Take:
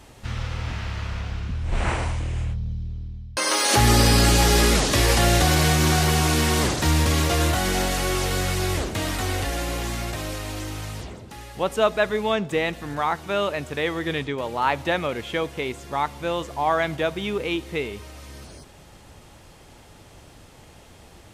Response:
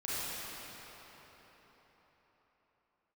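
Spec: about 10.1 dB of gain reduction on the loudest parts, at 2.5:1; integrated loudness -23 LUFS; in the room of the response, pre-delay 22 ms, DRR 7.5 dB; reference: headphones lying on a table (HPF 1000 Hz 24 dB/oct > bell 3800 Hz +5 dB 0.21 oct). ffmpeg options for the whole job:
-filter_complex "[0:a]acompressor=threshold=-29dB:ratio=2.5,asplit=2[a][b];[1:a]atrim=start_sample=2205,adelay=22[c];[b][c]afir=irnorm=-1:irlink=0,volume=-13.5dB[d];[a][d]amix=inputs=2:normalize=0,highpass=f=1k:w=0.5412,highpass=f=1k:w=1.3066,equalizer=f=3.8k:t=o:w=0.21:g=5,volume=10dB"

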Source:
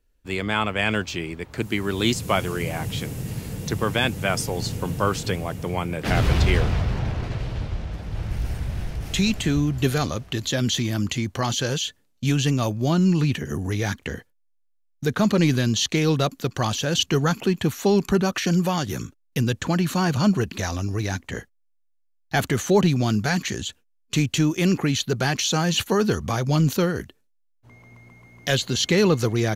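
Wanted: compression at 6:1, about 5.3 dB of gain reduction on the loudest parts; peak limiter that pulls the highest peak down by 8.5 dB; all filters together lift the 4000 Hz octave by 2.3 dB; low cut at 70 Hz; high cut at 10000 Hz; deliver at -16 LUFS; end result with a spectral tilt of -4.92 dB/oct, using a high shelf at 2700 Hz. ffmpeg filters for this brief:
-af "highpass=70,lowpass=10k,highshelf=f=2.7k:g=-5,equalizer=f=4k:t=o:g=7,acompressor=threshold=-20dB:ratio=6,volume=11.5dB,alimiter=limit=-4.5dB:level=0:latency=1"

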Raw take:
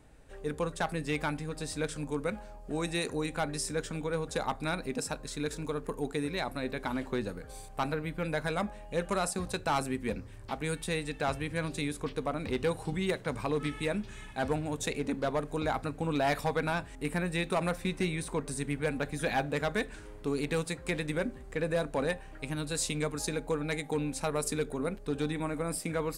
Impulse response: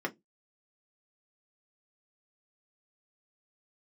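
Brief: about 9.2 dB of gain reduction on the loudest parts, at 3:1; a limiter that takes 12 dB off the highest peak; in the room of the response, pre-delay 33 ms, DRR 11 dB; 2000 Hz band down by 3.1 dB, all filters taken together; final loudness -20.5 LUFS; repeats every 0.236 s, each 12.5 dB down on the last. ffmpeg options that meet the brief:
-filter_complex "[0:a]equalizer=f=2k:t=o:g=-4,acompressor=threshold=-39dB:ratio=3,alimiter=level_in=13dB:limit=-24dB:level=0:latency=1,volume=-13dB,aecho=1:1:236|472|708:0.237|0.0569|0.0137,asplit=2[a][b];[1:a]atrim=start_sample=2205,adelay=33[c];[b][c]afir=irnorm=-1:irlink=0,volume=-16.5dB[d];[a][d]amix=inputs=2:normalize=0,volume=25dB"

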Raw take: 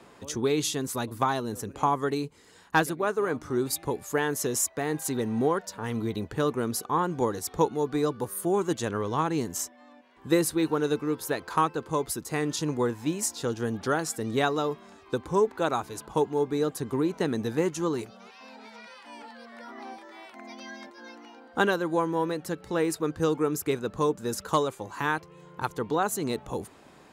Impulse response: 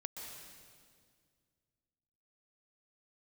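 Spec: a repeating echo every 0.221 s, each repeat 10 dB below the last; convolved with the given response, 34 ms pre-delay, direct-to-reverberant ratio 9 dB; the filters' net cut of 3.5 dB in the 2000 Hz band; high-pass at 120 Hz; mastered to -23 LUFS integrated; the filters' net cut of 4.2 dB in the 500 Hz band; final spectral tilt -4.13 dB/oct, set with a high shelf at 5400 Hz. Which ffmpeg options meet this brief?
-filter_complex "[0:a]highpass=120,equalizer=f=500:t=o:g=-5,equalizer=f=2k:t=o:g=-5,highshelf=f=5.4k:g=4.5,aecho=1:1:221|442|663|884:0.316|0.101|0.0324|0.0104,asplit=2[a][b];[1:a]atrim=start_sample=2205,adelay=34[c];[b][c]afir=irnorm=-1:irlink=0,volume=-7dB[d];[a][d]amix=inputs=2:normalize=0,volume=6.5dB"

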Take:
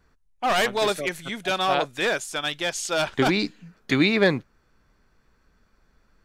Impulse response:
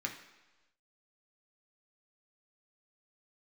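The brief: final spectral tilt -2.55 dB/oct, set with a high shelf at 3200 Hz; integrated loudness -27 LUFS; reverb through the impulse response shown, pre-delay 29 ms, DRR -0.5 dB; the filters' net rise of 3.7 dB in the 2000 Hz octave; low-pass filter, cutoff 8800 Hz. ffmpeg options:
-filter_complex "[0:a]lowpass=8.8k,equalizer=f=2k:t=o:g=7.5,highshelf=f=3.2k:g=-8.5,asplit=2[a][b];[1:a]atrim=start_sample=2205,adelay=29[c];[b][c]afir=irnorm=-1:irlink=0,volume=-2dB[d];[a][d]amix=inputs=2:normalize=0,volume=-7.5dB"

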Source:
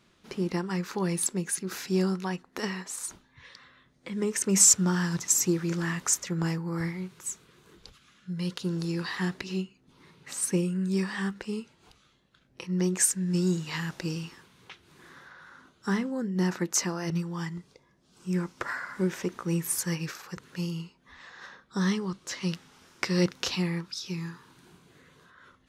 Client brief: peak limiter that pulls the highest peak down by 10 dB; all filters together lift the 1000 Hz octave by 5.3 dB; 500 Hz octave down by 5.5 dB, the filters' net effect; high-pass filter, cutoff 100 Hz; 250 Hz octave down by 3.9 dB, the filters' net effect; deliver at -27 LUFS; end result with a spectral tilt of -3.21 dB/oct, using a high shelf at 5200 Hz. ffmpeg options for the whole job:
-af "highpass=100,equalizer=f=250:t=o:g=-5,equalizer=f=500:t=o:g=-7,equalizer=f=1k:t=o:g=8,highshelf=f=5.2k:g=5,volume=4dB,alimiter=limit=-12.5dB:level=0:latency=1"

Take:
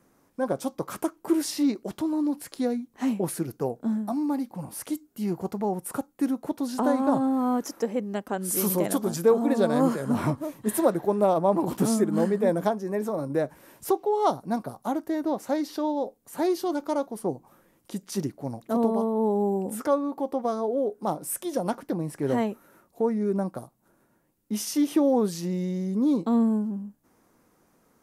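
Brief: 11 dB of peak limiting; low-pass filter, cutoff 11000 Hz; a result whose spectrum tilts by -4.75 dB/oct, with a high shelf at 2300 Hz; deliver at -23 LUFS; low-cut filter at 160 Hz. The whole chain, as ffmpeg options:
-af "highpass=160,lowpass=11k,highshelf=f=2.3k:g=5.5,volume=7dB,alimiter=limit=-12.5dB:level=0:latency=1"

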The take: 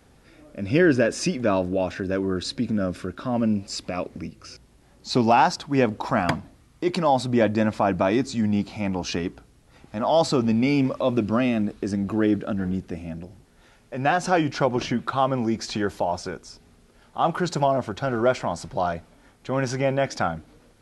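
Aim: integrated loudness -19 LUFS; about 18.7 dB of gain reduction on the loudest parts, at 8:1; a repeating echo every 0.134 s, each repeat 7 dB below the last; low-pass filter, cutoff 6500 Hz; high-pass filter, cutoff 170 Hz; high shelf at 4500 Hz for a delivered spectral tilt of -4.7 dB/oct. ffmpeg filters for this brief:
-af "highpass=170,lowpass=6.5k,highshelf=f=4.5k:g=3.5,acompressor=threshold=-34dB:ratio=8,aecho=1:1:134|268|402|536|670:0.447|0.201|0.0905|0.0407|0.0183,volume=18.5dB"

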